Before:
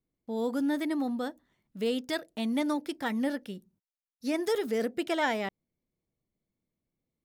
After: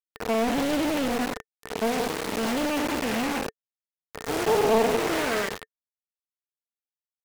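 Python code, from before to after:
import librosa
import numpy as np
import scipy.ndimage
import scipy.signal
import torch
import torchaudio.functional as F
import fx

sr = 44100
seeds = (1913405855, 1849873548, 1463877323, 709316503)

p1 = fx.spec_blur(x, sr, span_ms=435.0)
p2 = p1 + fx.echo_feedback(p1, sr, ms=96, feedback_pct=54, wet_db=-14.5, dry=0)
p3 = fx.quant_dither(p2, sr, seeds[0], bits=6, dither='none')
p4 = fx.peak_eq(p3, sr, hz=1200.0, db=3.5, octaves=0.45)
p5 = fx.small_body(p4, sr, hz=(440.0, 1800.0), ring_ms=45, db=10)
p6 = fx.doppler_dist(p5, sr, depth_ms=0.71)
y = F.gain(torch.from_numpy(p6), 7.0).numpy()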